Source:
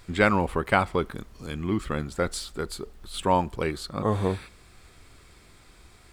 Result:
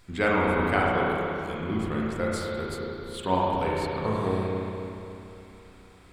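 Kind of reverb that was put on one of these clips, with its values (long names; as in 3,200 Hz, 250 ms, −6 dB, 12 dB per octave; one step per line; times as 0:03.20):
spring reverb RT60 3 s, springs 32/36 ms, chirp 70 ms, DRR −5 dB
level −6 dB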